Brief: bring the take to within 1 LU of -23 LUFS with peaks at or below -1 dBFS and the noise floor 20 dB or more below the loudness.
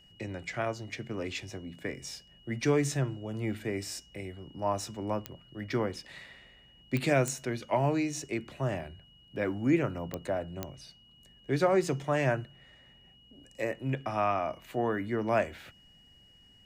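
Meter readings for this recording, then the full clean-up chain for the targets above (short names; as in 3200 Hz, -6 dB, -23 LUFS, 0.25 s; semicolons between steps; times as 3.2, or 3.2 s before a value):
clicks 5; steady tone 2900 Hz; tone level -58 dBFS; loudness -32.0 LUFS; peak -14.5 dBFS; loudness target -23.0 LUFS
-> de-click; notch 2900 Hz, Q 30; gain +9 dB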